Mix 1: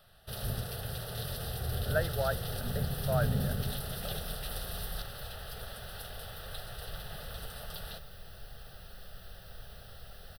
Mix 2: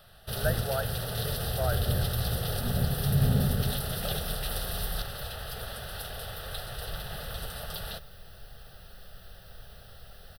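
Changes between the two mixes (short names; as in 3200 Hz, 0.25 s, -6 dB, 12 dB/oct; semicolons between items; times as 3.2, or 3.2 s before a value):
speech: entry -1.50 s; first sound +6.0 dB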